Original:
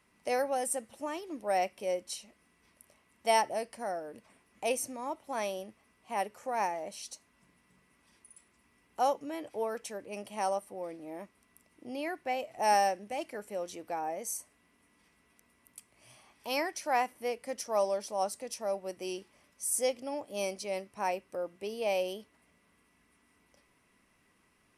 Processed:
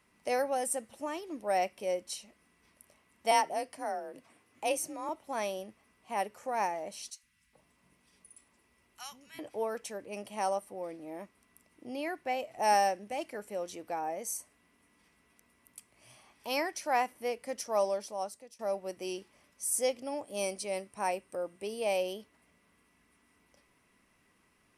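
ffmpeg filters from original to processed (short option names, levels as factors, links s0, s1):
-filter_complex "[0:a]asettb=1/sr,asplit=3[s0][s1][s2];[s0]atrim=end=3.314[s3];[s1]atrim=start=3.31:end=5.09,asetpts=PTS-STARTPTS,afade=t=in:d=0.004:c=qsin,afade=t=out:st=1.776:d=0.004:c=qsin,afreqshift=39[s4];[s2]atrim=start=5.086[s5];[s3][s4]acrossfade=d=0.004:c1=hsin:c2=qsin[s6];[s6][s5]acrossfade=d=0.004:c1=qsin:c2=hsin,asettb=1/sr,asplit=3[s7][s8][s9];[s7]atrim=end=7.104[s10];[s8]atrim=start=7.1:end=9.39,asetpts=PTS-STARTPTS,afade=t=in:d=0.004:c=qsin,afade=t=out:st=2.286:d=0.004:c=qsin,acrossover=split=190|1500[s11][s12][s13];[s11]adelay=130[s14];[s12]adelay=430[s15];[s14][s15][s13]amix=inputs=3:normalize=0,atrim=end_sample=100989[s16];[s9]atrim=start=9.386[s17];[s10][s16]acrossfade=d=0.004:c1=hsin:c2=qsin[s18];[s18][s17]acrossfade=d=0.004:c1=qsin:c2=hsin,asettb=1/sr,asplit=3[s19][s20][s21];[s19]atrim=end=20.054[s22];[s20]atrim=start=20.05:end=21.97,asetpts=PTS-STARTPTS,afade=t=in:d=0.004:c=qsin,afade=t=out:st=1.916:d=0.004:c=qsin,equalizer=f=8800:w=5.6:g=13.5[s23];[s21]atrim=start=21.966[s24];[s22][s23]acrossfade=d=0.004:c1=hsin:c2=qsin[s25];[s25][s24]acrossfade=d=0.004:c1=qsin:c2=hsin,asplit=2[s26][s27];[s26]atrim=end=18.59,asetpts=PTS-STARTPTS,afade=t=out:st=17.88:d=0.71:silence=0.0944061[s28];[s27]atrim=start=18.59,asetpts=PTS-STARTPTS,afade=t=in:d=0.004:c=hsin:silence=0.0944061[s29];[s28][s29]concat=n=2:v=0:a=1"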